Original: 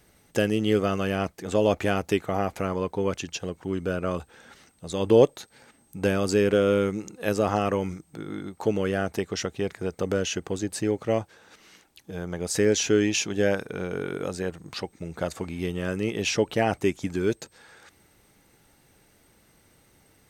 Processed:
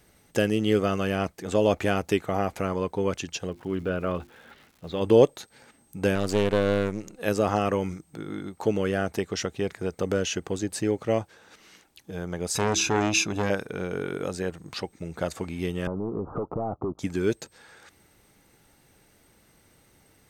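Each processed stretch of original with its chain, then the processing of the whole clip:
0:03.47–0:05.00: low-pass filter 3,800 Hz 24 dB per octave + mains-hum notches 50/100/150/200/250/300/350 Hz + surface crackle 460 per second −48 dBFS
0:06.15–0:07.19: gain on one half-wave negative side −7 dB + highs frequency-modulated by the lows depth 0.3 ms
0:12.55–0:13.50: comb filter 0.8 ms, depth 99% + hum removal 65.04 Hz, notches 6 + saturating transformer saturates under 1,100 Hz
0:15.87–0:16.99: leveller curve on the samples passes 3 + Butterworth low-pass 1,300 Hz 96 dB per octave + downward compressor 5 to 1, threshold −28 dBFS
whole clip: no processing

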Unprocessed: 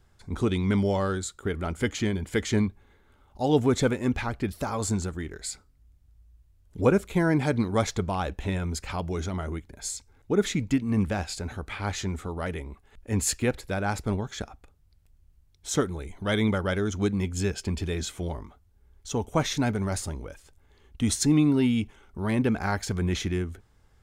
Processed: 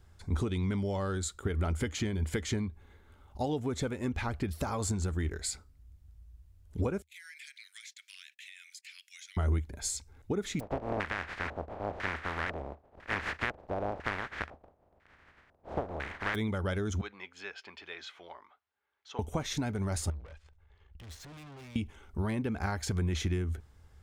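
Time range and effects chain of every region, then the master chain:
0:07.02–0:09.37: noise gate −39 dBFS, range −23 dB + Butterworth high-pass 1,900 Hz 48 dB per octave + downward compressor 12 to 1, threshold −45 dBFS
0:10.59–0:16.34: compressing power law on the bin magnitudes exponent 0.15 + auto-filter low-pass square 1 Hz 660–1,800 Hz
0:17.01–0:19.19: high-pass filter 1,100 Hz + high-frequency loss of the air 290 metres
0:20.10–0:21.76: low-pass filter 3,200 Hz + parametric band 260 Hz −13.5 dB 1.1 octaves + tube saturation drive 48 dB, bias 0.75
whole clip: downward compressor 12 to 1, threshold −29 dBFS; parametric band 76 Hz +11 dB 0.39 octaves

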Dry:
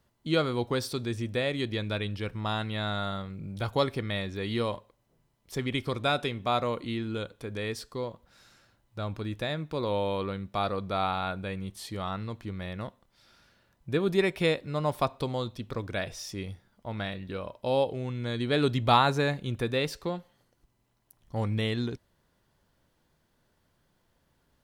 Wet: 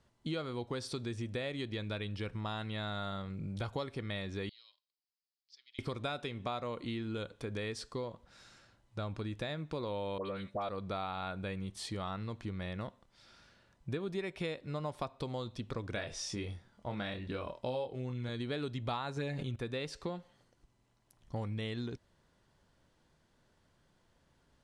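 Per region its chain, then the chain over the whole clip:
0:04.49–0:05.79: four-pole ladder band-pass 5,100 Hz, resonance 75% + high-frequency loss of the air 200 metres
0:10.18–0:10.69: high-pass filter 190 Hz 6 dB per octave + parametric band 570 Hz +7 dB 0.34 octaves + all-pass dispersion highs, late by 80 ms, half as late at 1,500 Hz
0:15.93–0:18.29: low-pass filter 11,000 Hz 24 dB per octave + double-tracking delay 24 ms −5 dB
0:19.16–0:19.56: comb filter 7.4 ms, depth 78% + level that may fall only so fast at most 36 dB per second
whole clip: downward compressor 6 to 1, threshold −35 dBFS; low-pass filter 9,400 Hz 24 dB per octave

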